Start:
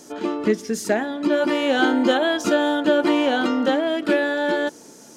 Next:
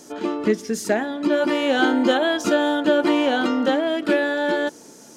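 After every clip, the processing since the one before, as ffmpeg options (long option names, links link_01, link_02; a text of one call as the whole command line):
ffmpeg -i in.wav -af anull out.wav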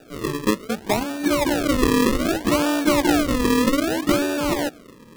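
ffmpeg -i in.wav -af "asubboost=boost=4:cutoff=240,highpass=180,lowpass=2900,acrusher=samples=41:mix=1:aa=0.000001:lfo=1:lforange=41:lforate=0.64" out.wav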